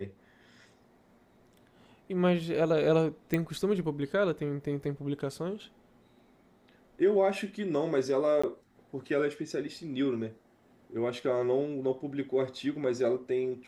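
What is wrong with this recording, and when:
3.34 s: pop -16 dBFS
8.42–8.44 s: dropout 15 ms

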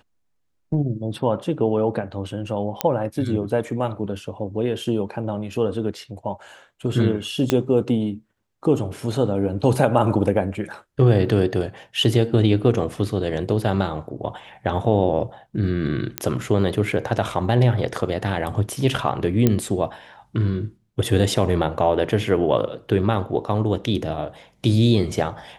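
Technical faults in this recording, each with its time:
2.81 s: pop -3 dBFS
7.50 s: pop -5 dBFS
16.18 s: pop -5 dBFS
19.47 s: pop -4 dBFS

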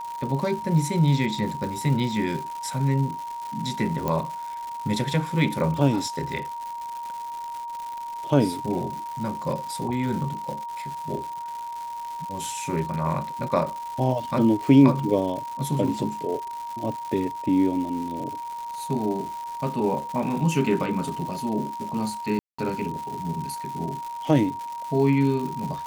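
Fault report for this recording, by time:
crackle 270 per s -32 dBFS
whine 940 Hz -31 dBFS
4.08 s: pop -13 dBFS
22.39–22.59 s: dropout 195 ms

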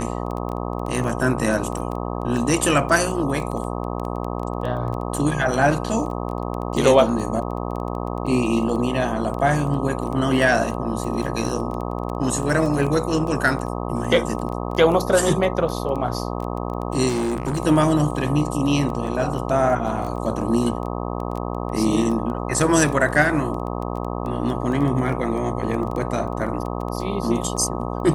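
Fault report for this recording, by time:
buzz 60 Hz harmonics 21 -27 dBFS
crackle 10 per s -26 dBFS
17.08–17.60 s: clipped -19 dBFS

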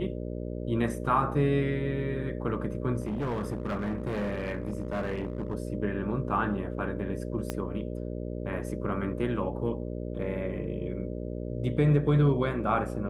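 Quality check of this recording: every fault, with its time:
buzz 60 Hz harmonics 10 -35 dBFS
3.00–5.55 s: clipped -27 dBFS
7.50 s: pop -16 dBFS

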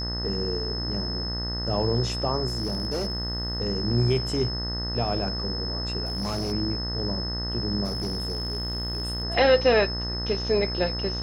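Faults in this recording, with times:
buzz 60 Hz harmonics 33 -32 dBFS
whine 5.2 kHz -31 dBFS
2.47–3.58 s: clipped -23.5 dBFS
6.05–6.53 s: clipped -25 dBFS
7.84–9.24 s: clipped -25 dBFS

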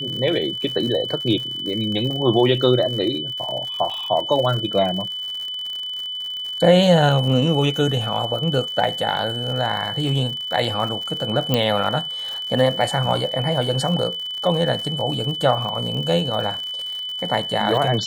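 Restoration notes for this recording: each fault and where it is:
crackle 86 per s -28 dBFS
whine 3 kHz -26 dBFS
3.90 s: dropout 3.4 ms
11.54 s: pop -5 dBFS

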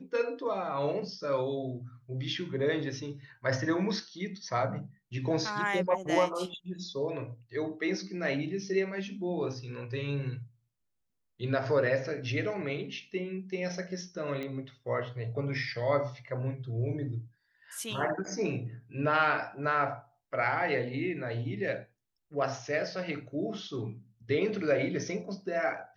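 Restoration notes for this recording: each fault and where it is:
14.43 s: pop -25 dBFS

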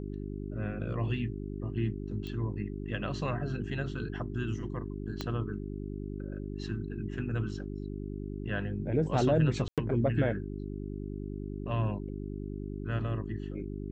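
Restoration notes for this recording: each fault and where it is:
hum 50 Hz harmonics 8 -38 dBFS
2.27 s: pop -28 dBFS
5.21 s: pop -20 dBFS
9.68–9.78 s: dropout 97 ms

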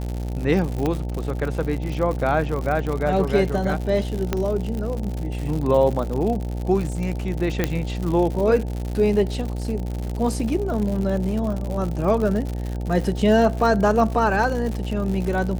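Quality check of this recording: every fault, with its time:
buzz 60 Hz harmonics 15 -27 dBFS
crackle 110 per s -27 dBFS
0.86 s: pop -11 dBFS
4.33 s: pop -8 dBFS
7.64 s: pop -6 dBFS

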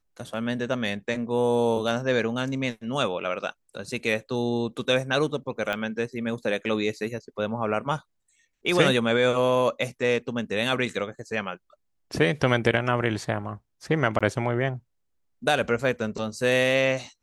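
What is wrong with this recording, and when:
5.73 s: pop -15 dBFS
14.19–14.21 s: dropout 16 ms

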